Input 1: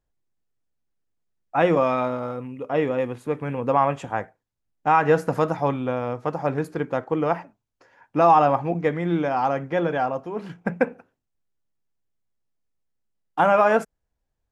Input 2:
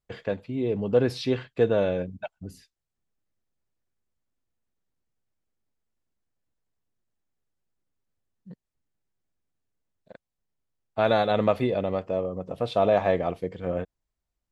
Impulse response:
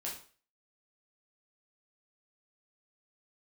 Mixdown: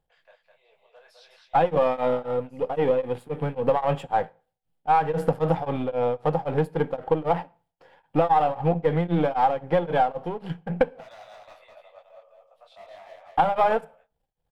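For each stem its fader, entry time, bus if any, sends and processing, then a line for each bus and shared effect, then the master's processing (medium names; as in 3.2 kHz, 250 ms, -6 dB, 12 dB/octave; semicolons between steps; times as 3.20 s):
+2.0 dB, 0.00 s, send -20 dB, no echo send, partial rectifier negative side -7 dB; graphic EQ with 31 bands 160 Hz +11 dB, 500 Hz +9 dB, 800 Hz +10 dB, 3.15 kHz +7 dB, 6.3 kHz -10 dB; tremolo of two beating tones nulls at 3.8 Hz
-15.0 dB, 0.00 s, no send, echo send -4.5 dB, steep high-pass 600 Hz 48 dB/octave; hard clipper -24.5 dBFS, distortion -9 dB; detune thickener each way 50 cents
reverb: on, RT60 0.40 s, pre-delay 6 ms
echo: delay 207 ms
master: compression 12:1, threshold -16 dBFS, peak gain reduction 10.5 dB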